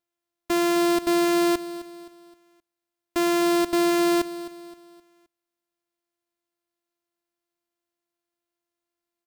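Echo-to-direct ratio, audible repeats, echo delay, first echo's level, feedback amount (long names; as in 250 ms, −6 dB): −14.0 dB, 3, 261 ms, −15.0 dB, 40%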